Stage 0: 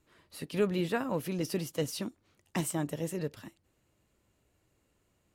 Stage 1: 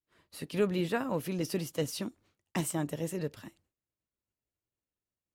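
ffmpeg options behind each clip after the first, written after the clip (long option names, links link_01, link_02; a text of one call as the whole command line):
ffmpeg -i in.wav -af "agate=range=-33dB:threshold=-58dB:ratio=3:detection=peak" out.wav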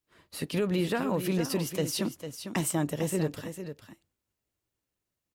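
ffmpeg -i in.wav -af "alimiter=level_in=1.5dB:limit=-24dB:level=0:latency=1:release=108,volume=-1.5dB,aecho=1:1:451:0.335,volume=6.5dB" out.wav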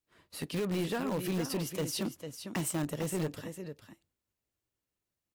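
ffmpeg -i in.wav -filter_complex "[0:a]asplit=2[link_01][link_02];[link_02]aeval=exprs='(mod(13.3*val(0)+1,2)-1)/13.3':channel_layout=same,volume=-11dB[link_03];[link_01][link_03]amix=inputs=2:normalize=0,volume=-5.5dB" -ar 44100 -c:a aac -b:a 192k out.aac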